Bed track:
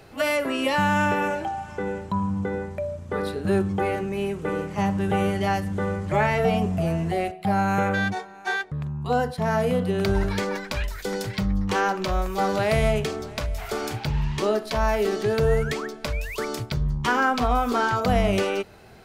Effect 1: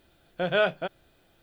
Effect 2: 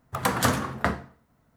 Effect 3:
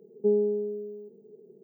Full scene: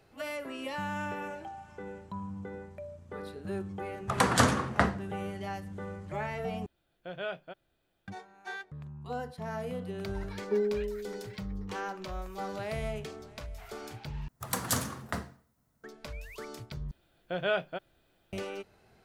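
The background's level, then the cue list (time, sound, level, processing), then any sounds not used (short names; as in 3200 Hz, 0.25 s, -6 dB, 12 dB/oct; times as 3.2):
bed track -14 dB
3.95 add 2 -0.5 dB + LPF 10000 Hz 24 dB/oct
6.66 replace with 1 -13.5 dB
10.27 add 3 -5 dB
14.28 replace with 2 -11 dB + tone controls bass +3 dB, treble +11 dB
16.91 replace with 1 -6 dB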